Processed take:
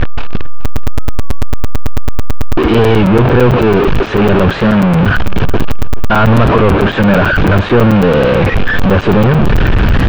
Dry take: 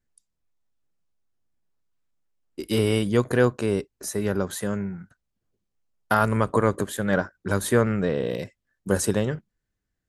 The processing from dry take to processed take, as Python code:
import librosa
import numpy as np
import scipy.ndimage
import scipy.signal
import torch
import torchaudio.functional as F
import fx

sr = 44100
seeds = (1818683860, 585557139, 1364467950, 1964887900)

p1 = fx.delta_mod(x, sr, bps=64000, step_db=-23.0)
p2 = fx.leveller(p1, sr, passes=5)
p3 = scipy.signal.sosfilt(scipy.signal.butter(4, 2800.0, 'lowpass', fs=sr, output='sos'), p2)
p4 = fx.low_shelf(p3, sr, hz=150.0, db=5.0)
p5 = p4 + fx.echo_single(p4, sr, ms=427, db=-19.5, dry=0)
p6 = p5 + 10.0 ** (-38.0 / 20.0) * np.sin(2.0 * np.pi * 1200.0 * np.arange(len(p5)) / sr)
p7 = fx.peak_eq(p6, sr, hz=2000.0, db=-8.5, octaves=0.23)
p8 = fx.buffer_crackle(p7, sr, first_s=0.65, period_s=0.11, block=256, kind='zero')
p9 = fx.record_warp(p8, sr, rpm=33.33, depth_cents=100.0)
y = p9 * librosa.db_to_amplitude(1.0)